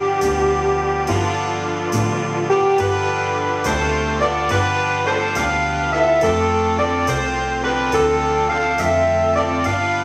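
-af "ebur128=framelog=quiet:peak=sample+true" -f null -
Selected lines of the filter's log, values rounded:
Integrated loudness:
  I:         -18.5 LUFS
  Threshold: -28.5 LUFS
Loudness range:
  LRA:         1.2 LU
  Threshold: -38.5 LUFS
  LRA low:   -19.3 LUFS
  LRA high:  -18.1 LUFS
Sample peak:
  Peak:       -4.5 dBFS
True peak:
  Peak:       -4.5 dBFS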